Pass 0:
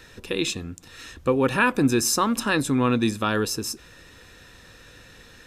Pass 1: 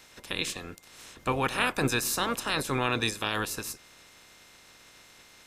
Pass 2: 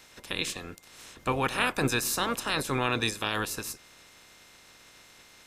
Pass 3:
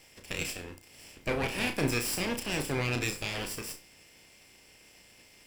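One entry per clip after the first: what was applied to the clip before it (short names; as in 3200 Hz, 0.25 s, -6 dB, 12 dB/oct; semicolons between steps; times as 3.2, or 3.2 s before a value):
spectral limiter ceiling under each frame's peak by 20 dB; whine 2100 Hz -56 dBFS; gain -6.5 dB
nothing audible
minimum comb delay 0.38 ms; flutter echo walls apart 5.7 m, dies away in 0.26 s; gain -2 dB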